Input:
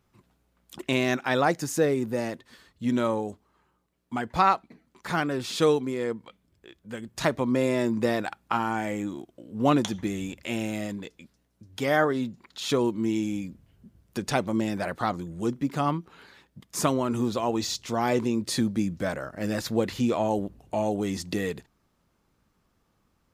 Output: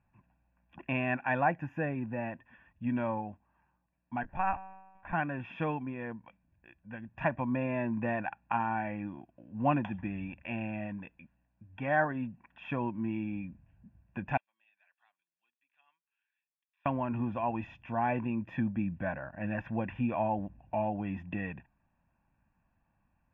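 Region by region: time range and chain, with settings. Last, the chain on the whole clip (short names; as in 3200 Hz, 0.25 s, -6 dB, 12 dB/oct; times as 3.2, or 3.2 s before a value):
4.23–5.13 resonator 64 Hz, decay 1.3 s, mix 50% + LPC vocoder at 8 kHz pitch kept
14.37–16.86 ladder band-pass 4100 Hz, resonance 85% + air absorption 350 m
whole clip: elliptic low-pass 2700 Hz, stop band 40 dB; comb 1.2 ms, depth 80%; gain -6.5 dB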